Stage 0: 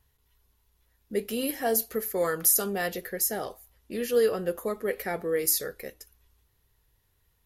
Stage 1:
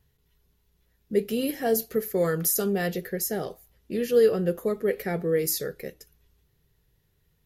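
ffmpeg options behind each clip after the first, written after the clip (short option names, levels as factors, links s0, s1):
-af "equalizer=f=160:t=o:w=0.67:g=12,equalizer=f=400:t=o:w=0.67:g=5,equalizer=f=1000:t=o:w=0.67:g=-5,equalizer=f=10000:t=o:w=0.67:g=-5"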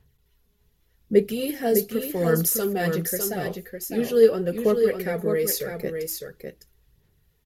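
-af "aphaser=in_gain=1:out_gain=1:delay=4.9:decay=0.51:speed=0.85:type=sinusoidal,aecho=1:1:605:0.501"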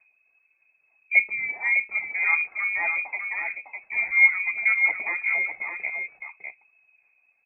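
-af "lowpass=f=2200:t=q:w=0.5098,lowpass=f=2200:t=q:w=0.6013,lowpass=f=2200:t=q:w=0.9,lowpass=f=2200:t=q:w=2.563,afreqshift=-2600,volume=0.841"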